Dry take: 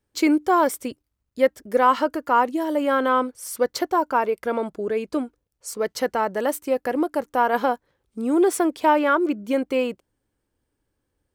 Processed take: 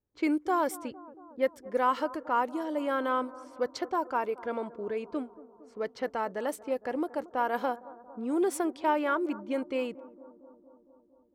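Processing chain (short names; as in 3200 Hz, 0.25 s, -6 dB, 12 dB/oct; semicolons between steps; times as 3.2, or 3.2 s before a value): low-pass opened by the level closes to 1000 Hz, open at -17.5 dBFS; analogue delay 0.229 s, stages 2048, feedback 69%, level -19 dB; gain -9 dB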